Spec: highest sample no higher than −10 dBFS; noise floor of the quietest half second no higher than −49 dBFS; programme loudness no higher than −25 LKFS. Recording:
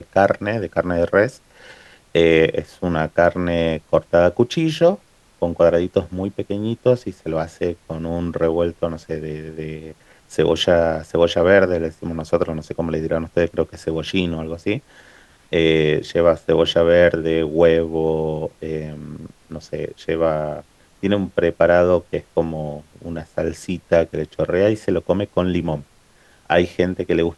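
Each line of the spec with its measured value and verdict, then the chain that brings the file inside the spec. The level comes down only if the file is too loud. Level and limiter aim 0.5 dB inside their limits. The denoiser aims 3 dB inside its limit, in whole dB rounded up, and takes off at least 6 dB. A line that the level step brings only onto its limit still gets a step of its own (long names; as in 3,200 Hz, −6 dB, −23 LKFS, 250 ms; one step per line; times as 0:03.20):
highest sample −2.0 dBFS: out of spec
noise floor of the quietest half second −53 dBFS: in spec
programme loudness −19.5 LKFS: out of spec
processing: level −6 dB
brickwall limiter −10.5 dBFS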